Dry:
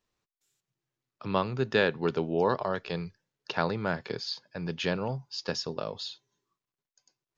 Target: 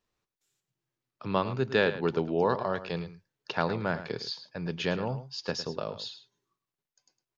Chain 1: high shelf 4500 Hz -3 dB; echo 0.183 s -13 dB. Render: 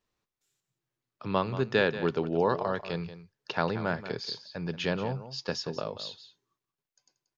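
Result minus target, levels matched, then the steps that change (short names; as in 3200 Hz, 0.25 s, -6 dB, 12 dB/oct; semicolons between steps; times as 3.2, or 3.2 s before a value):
echo 75 ms late
change: echo 0.108 s -13 dB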